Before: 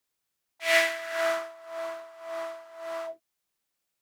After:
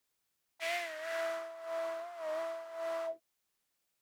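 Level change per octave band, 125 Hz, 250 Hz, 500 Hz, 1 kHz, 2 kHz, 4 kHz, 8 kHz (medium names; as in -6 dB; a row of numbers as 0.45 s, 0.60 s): no reading, -8.5 dB, -6.0 dB, -6.0 dB, -13.0 dB, -12.0 dB, -12.0 dB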